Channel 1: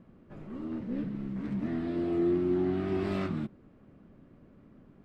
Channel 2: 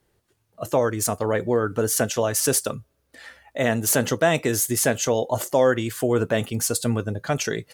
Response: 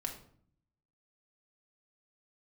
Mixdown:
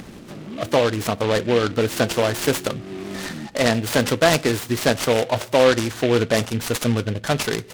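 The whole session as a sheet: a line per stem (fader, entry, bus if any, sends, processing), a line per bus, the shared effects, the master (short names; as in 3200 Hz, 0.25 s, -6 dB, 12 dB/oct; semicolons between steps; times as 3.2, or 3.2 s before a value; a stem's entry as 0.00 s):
-4.5 dB, 0.00 s, no send, Chebyshev high-pass 160 Hz, order 2; compressor, threshold -30 dBFS, peak gain reduction 6 dB
+1.5 dB, 0.00 s, send -15 dB, dry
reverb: on, RT60 0.55 s, pre-delay 4 ms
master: resonant high shelf 5700 Hz -12 dB, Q 3; upward compressor, threshold -22 dBFS; noise-modulated delay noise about 2200 Hz, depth 0.07 ms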